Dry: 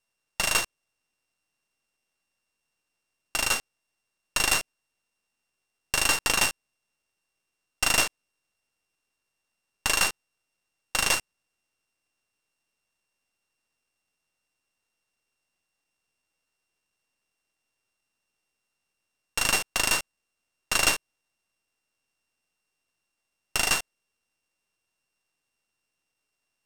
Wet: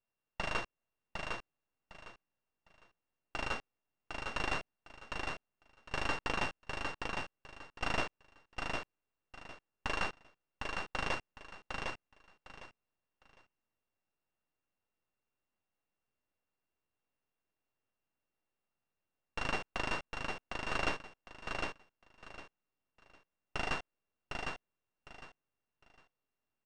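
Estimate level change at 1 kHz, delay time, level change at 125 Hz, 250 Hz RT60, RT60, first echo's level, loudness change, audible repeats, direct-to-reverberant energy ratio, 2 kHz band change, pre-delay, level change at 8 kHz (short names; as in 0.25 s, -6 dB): -6.0 dB, 0.756 s, -3.0 dB, none, none, -4.0 dB, -14.5 dB, 3, none, -10.0 dB, none, -26.0 dB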